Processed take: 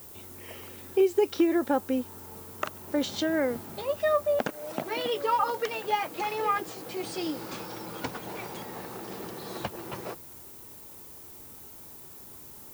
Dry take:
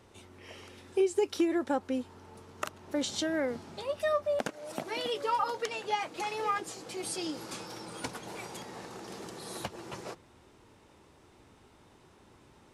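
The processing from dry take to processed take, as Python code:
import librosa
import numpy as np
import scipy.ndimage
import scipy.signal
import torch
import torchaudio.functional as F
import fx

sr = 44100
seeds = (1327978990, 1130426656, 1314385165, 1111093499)

y = scipy.signal.sosfilt(scipy.signal.butter(2, 6300.0, 'lowpass', fs=sr, output='sos'), x)
y = fx.high_shelf(y, sr, hz=3600.0, db=-6.0)
y = fx.dmg_noise_colour(y, sr, seeds[0], colour='violet', level_db=-52.0)
y = y * librosa.db_to_amplitude(4.5)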